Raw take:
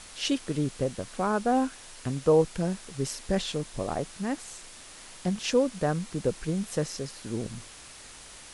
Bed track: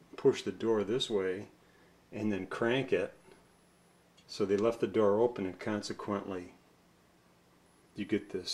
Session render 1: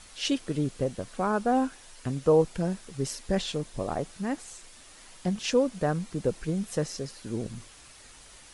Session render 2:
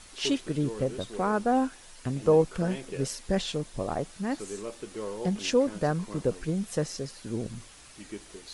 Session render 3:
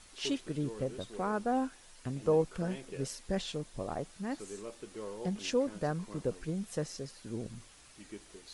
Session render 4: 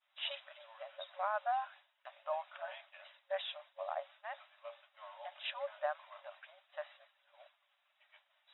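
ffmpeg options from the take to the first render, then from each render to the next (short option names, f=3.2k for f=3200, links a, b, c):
-af "afftdn=nr=6:nf=-48"
-filter_complex "[1:a]volume=-8.5dB[a];[0:a][a]amix=inputs=2:normalize=0"
-af "volume=-6.5dB"
-af "afftfilt=real='re*between(b*sr/4096,550,3900)':imag='im*between(b*sr/4096,550,3900)':win_size=4096:overlap=0.75,agate=range=-33dB:threshold=-52dB:ratio=3:detection=peak"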